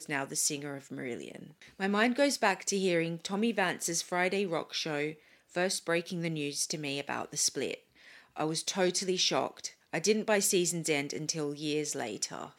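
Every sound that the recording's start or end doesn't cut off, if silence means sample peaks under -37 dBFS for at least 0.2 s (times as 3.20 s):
1.80–5.11 s
5.55–7.75 s
8.37–9.68 s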